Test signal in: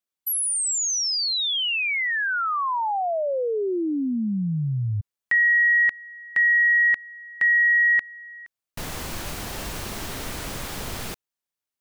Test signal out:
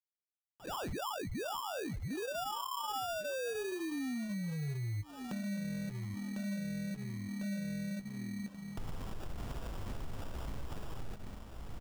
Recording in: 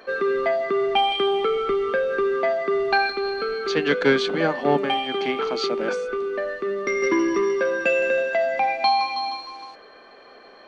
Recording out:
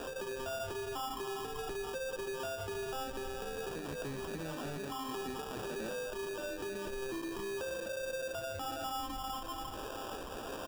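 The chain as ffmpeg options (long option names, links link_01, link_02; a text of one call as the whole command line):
ffmpeg -i in.wav -filter_complex "[0:a]asplit=2[link_01][link_02];[link_02]alimiter=limit=-18dB:level=0:latency=1,volume=-2.5dB[link_03];[link_01][link_03]amix=inputs=2:normalize=0,asplit=2[link_04][link_05];[link_05]adelay=19,volume=-13dB[link_06];[link_04][link_06]amix=inputs=2:normalize=0,acrossover=split=150[link_07][link_08];[link_08]acompressor=threshold=-31dB:ratio=2:attack=4.1:release=672:knee=2.83:detection=peak[link_09];[link_07][link_09]amix=inputs=2:normalize=0,equalizer=frequency=84:width_type=o:width=1.6:gain=-2.5,aecho=1:1:1132|2264|3396|4528:0.075|0.0405|0.0219|0.0118,acrossover=split=2000[link_10][link_11];[link_10]aeval=exprs='val(0)*(1-0.5/2+0.5/2*cos(2*PI*1.7*n/s))':channel_layout=same[link_12];[link_11]aeval=exprs='val(0)*(1-0.5/2-0.5/2*cos(2*PI*1.7*n/s))':channel_layout=same[link_13];[link_12][link_13]amix=inputs=2:normalize=0,aresample=16000,asoftclip=type=hard:threshold=-26.5dB,aresample=44100,acrusher=bits=9:mix=0:aa=0.000001,flanger=delay=7.5:depth=7.3:regen=-38:speed=1:shape=sinusoidal,lowshelf=frequency=140:gain=10.5,acompressor=threshold=-41dB:ratio=12:attack=0.49:release=152:knee=1:detection=peak,acrusher=samples=21:mix=1:aa=0.000001,volume=6dB" out.wav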